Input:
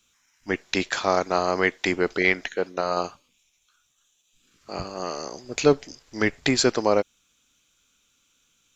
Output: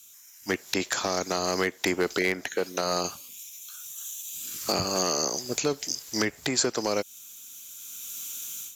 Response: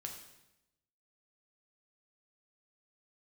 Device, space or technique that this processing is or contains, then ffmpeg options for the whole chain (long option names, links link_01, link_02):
FM broadcast chain: -filter_complex "[0:a]highpass=72,dynaudnorm=framelen=410:gausssize=3:maxgain=15.5dB,acrossover=split=450|1600[link_01][link_02][link_03];[link_01]acompressor=threshold=-25dB:ratio=4[link_04];[link_02]acompressor=threshold=-27dB:ratio=4[link_05];[link_03]acompressor=threshold=-35dB:ratio=4[link_06];[link_04][link_05][link_06]amix=inputs=3:normalize=0,aemphasis=mode=production:type=50fm,alimiter=limit=-13.5dB:level=0:latency=1:release=331,asoftclip=type=hard:threshold=-17dB,lowpass=frequency=15000:width=0.5412,lowpass=frequency=15000:width=1.3066,aemphasis=mode=production:type=50fm"